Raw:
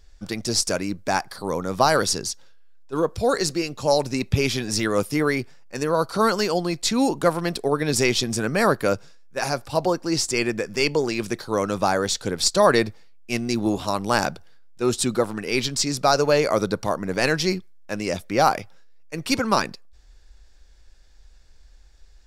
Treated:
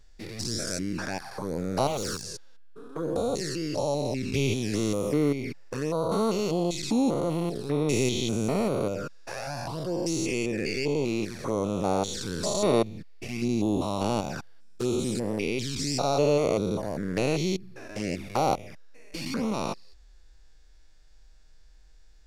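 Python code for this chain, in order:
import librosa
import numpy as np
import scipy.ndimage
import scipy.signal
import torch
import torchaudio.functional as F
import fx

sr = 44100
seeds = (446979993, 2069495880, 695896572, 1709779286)

y = fx.spec_steps(x, sr, hold_ms=200)
y = fx.overload_stage(y, sr, gain_db=25.0, at=(1.87, 2.3))
y = fx.env_flanger(y, sr, rest_ms=7.7, full_db=-23.0)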